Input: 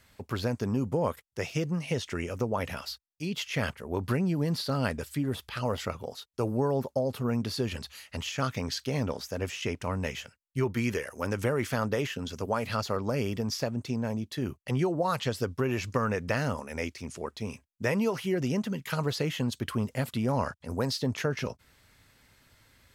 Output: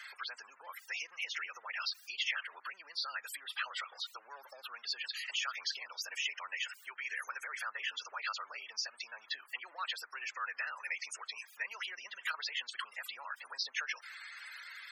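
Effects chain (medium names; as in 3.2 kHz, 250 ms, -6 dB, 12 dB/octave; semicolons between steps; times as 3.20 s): jump at every zero crossing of -41 dBFS; compression 6:1, threshold -31 dBFS, peak gain reduction 9 dB; loudest bins only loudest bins 64; time stretch by phase-locked vocoder 0.65×; ladder high-pass 1.2 kHz, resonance 30%; trim +9.5 dB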